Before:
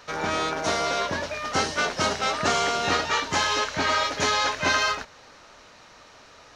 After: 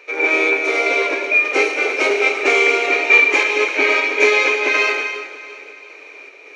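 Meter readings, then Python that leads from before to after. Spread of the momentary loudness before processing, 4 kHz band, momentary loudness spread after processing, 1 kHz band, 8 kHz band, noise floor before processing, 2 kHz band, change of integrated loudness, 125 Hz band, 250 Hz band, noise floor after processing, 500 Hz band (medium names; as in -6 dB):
5 LU, +1.0 dB, 9 LU, +0.5 dB, -2.0 dB, -51 dBFS, +13.0 dB, +9.5 dB, under -30 dB, +5.0 dB, -40 dBFS, +10.5 dB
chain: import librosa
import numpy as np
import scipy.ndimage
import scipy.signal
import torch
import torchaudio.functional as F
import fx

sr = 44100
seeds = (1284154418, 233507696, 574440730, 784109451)

p1 = fx.peak_eq(x, sr, hz=2200.0, db=14.0, octaves=0.49)
p2 = fx.notch(p1, sr, hz=5000.0, q=12.0)
p3 = fx.small_body(p2, sr, hz=(410.0, 2400.0), ring_ms=25, db=18)
p4 = fx.volume_shaper(p3, sr, bpm=105, per_beat=1, depth_db=-14, release_ms=172.0, shape='slow start')
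p5 = p3 + (p4 * librosa.db_to_amplitude(2.0))
p6 = fx.brickwall_highpass(p5, sr, low_hz=260.0)
p7 = p6 + fx.echo_feedback(p6, sr, ms=342, feedback_pct=49, wet_db=-16.5, dry=0)
p8 = fx.rev_gated(p7, sr, seeds[0], gate_ms=320, shape='flat', drr_db=5.5)
y = p8 * librosa.db_to_amplitude(-10.0)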